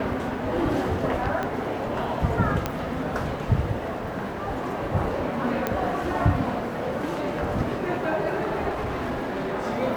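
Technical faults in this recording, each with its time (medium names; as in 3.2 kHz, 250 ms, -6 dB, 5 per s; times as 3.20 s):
1.43 s: pop -16 dBFS
2.66 s: pop -10 dBFS
5.67 s: pop -11 dBFS
8.69–9.54 s: clipped -25 dBFS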